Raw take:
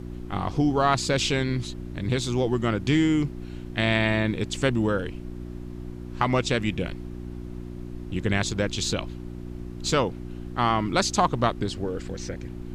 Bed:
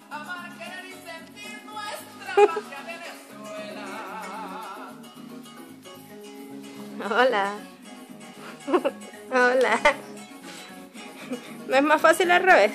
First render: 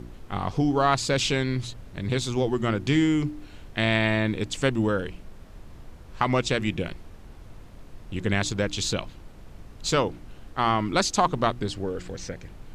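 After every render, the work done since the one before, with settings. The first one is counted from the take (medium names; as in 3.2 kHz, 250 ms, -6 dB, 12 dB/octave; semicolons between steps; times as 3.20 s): de-hum 60 Hz, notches 6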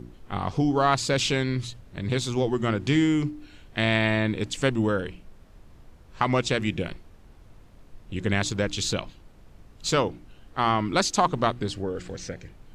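noise print and reduce 6 dB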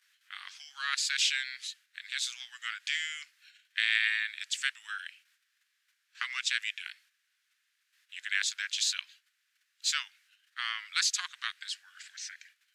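gate -45 dBFS, range -8 dB; elliptic high-pass 1.6 kHz, stop band 70 dB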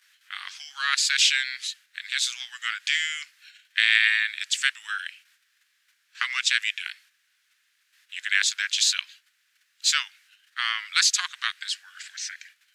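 trim +8 dB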